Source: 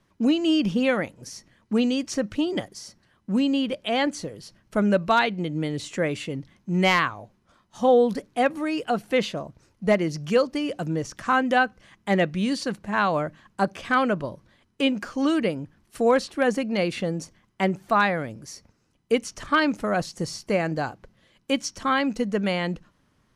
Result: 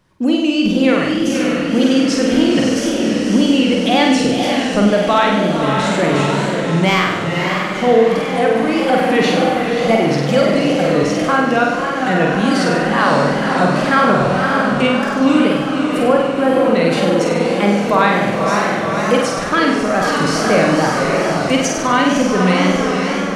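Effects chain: 16.05–16.73 LPF 1500 Hz 24 dB/oct; on a send: diffused feedback echo 0.545 s, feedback 69%, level -5.5 dB; on the sum: wow and flutter 120 cents; in parallel at +1 dB: limiter -17.5 dBFS, peak gain reduction 10 dB; on the sum: flutter echo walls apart 8.4 m, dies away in 0.92 s; AGC; gain -1 dB

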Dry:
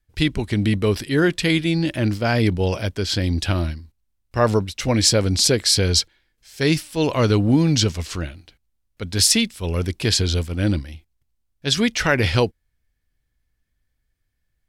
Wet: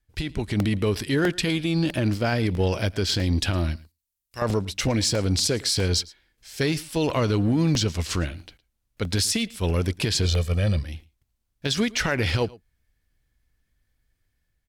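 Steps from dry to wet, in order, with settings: 1.46–2.02 notch 2000 Hz, Q 7.5; 3.76–4.42 pre-emphasis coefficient 0.9; 10.25–10.83 comb 1.7 ms, depth 92%; compressor 2:1, threshold -26 dBFS, peak gain reduction 8.5 dB; limiter -17.5 dBFS, peak gain reduction 8.5 dB; AGC gain up to 4 dB; added harmonics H 7 -33 dB, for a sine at -13.5 dBFS; echo 0.111 s -22 dB; crackling interface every 0.65 s, samples 64, repeat, from 0.6

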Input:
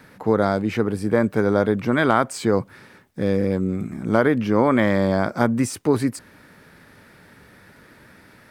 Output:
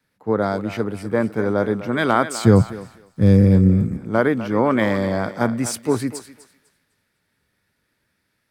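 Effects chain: 2.43–3.97 tone controls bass +12 dB, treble +7 dB; on a send: thinning echo 0.252 s, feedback 42%, high-pass 360 Hz, level -10 dB; on the sum: three-band expander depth 70%; gain -1 dB

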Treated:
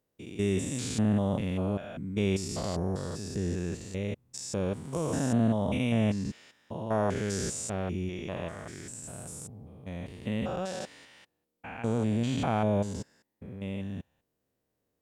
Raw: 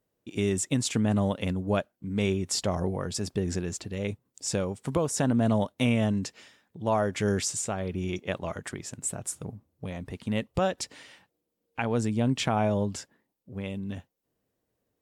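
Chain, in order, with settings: stepped spectrum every 0.2 s; 11.81–12.95 notch 5300 Hz, Q 6

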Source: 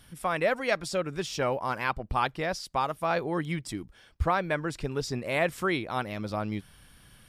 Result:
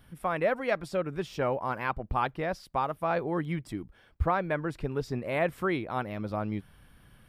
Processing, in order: bell 6600 Hz -13.5 dB 2.1 oct

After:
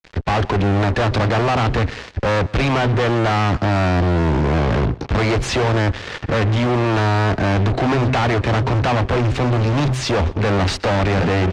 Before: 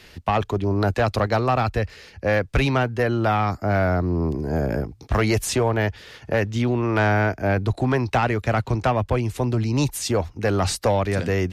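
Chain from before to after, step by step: expander -45 dBFS; high shelf 4700 Hz -10.5 dB; de-hum 128.4 Hz, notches 3; in parallel at -1 dB: limiter -22 dBFS, peak gain reduction 11 dB; on the sum: fuzz box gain 34 dB, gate -39 dBFS; air absorption 130 m; feedback echo 0.122 s, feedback 30%, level -22 dB; gain -2 dB; MP3 320 kbps 44100 Hz

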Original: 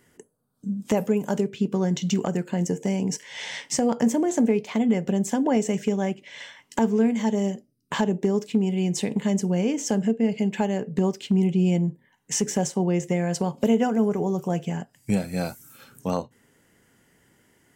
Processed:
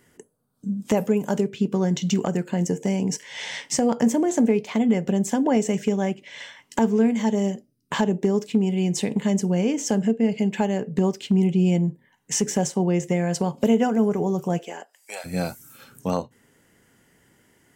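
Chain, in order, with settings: 14.57–15.24 HPF 290 Hz -> 720 Hz 24 dB/oct; gain +1.5 dB

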